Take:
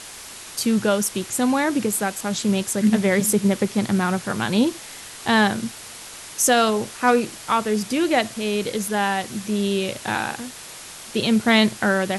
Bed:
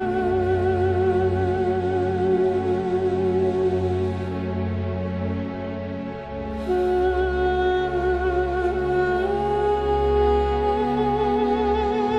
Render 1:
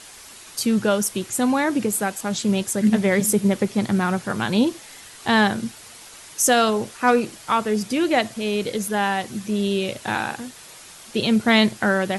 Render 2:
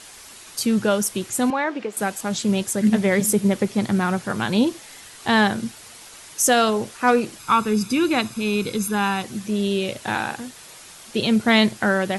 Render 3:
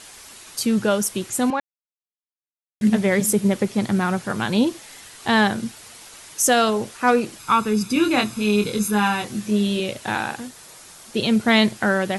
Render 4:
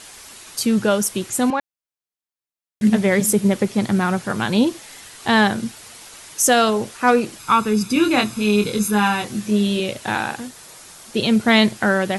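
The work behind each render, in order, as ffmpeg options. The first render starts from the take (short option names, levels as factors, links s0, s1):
-af "afftdn=nr=6:nf=-39"
-filter_complex "[0:a]asettb=1/sr,asplit=3[s0][s1][s2];[s0]atrim=end=1.504[s3];[s1]atrim=start=1.5:end=1.97,asetpts=PTS-STARTPTS,afade=t=in:d=0.004:c=qsin,afade=t=out:st=0.466:d=0.004:c=qsin,highpass=430,lowpass=3100[s4];[s2]atrim=start=1.966[s5];[s3][s4]acrossfade=d=0.004:c1=hsin:c2=qsin[s6];[s6][s5]acrossfade=d=0.004:c1=qsin:c2=hsin,asettb=1/sr,asplit=3[s7][s8][s9];[s7]atrim=end=7.394[s10];[s8]atrim=start=7.39:end=9.23,asetpts=PTS-STARTPTS,afade=t=in:d=0.004:c=qsin,afade=t=out:st=1.836:d=0.004:c=qsin,aecho=1:1:0.8:0.65,atrim=end_sample=81144[s11];[s9]atrim=start=9.226[s12];[s10][s11]acrossfade=d=0.004:c1=hsin:c2=qsin[s13];[s13][s12]acrossfade=d=0.004:c1=qsin:c2=hsin"
-filter_complex "[0:a]asettb=1/sr,asplit=3[s0][s1][s2];[s0]atrim=end=7.934[s3];[s1]atrim=start=7.93:end=9.8,asetpts=PTS-STARTPTS,afade=t=in:d=0.004:c=qsin,afade=t=out:st=1.866:d=0.004:c=qsin,asplit=2[s4][s5];[s5]adelay=24,volume=0.631[s6];[s4][s6]amix=inputs=2:normalize=0,atrim=end_sample=82467[s7];[s2]atrim=start=9.796[s8];[s3][s7]acrossfade=d=0.004:c1=hsin:c2=qsin[s9];[s9][s8]acrossfade=d=0.004:c1=qsin:c2=hsin,asettb=1/sr,asplit=3[s10][s11][s12];[s10]atrim=end=10.474[s13];[s11]atrim=start=10.47:end=11.17,asetpts=PTS-STARTPTS,afade=t=in:d=0.004:c=qsin,afade=t=out:st=0.696:d=0.004:c=qsin,equalizer=f=2800:w=1.2:g=-4[s14];[s12]atrim=start=11.166[s15];[s13][s14]acrossfade=d=0.004:c1=hsin:c2=qsin[s16];[s16][s15]acrossfade=d=0.004:c1=qsin:c2=hsin,asplit=3[s17][s18][s19];[s17]atrim=end=1.6,asetpts=PTS-STARTPTS,afade=t=out:st=1.596:d=0.004:c=hsin[s20];[s18]atrim=start=1.6:end=2.81,asetpts=PTS-STARTPTS,volume=0[s21];[s19]atrim=start=2.81,asetpts=PTS-STARTPTS,afade=t=in:d=0.004:c=hsin[s22];[s20][s21][s22]concat=n=3:v=0:a=1"
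-af "volume=1.26"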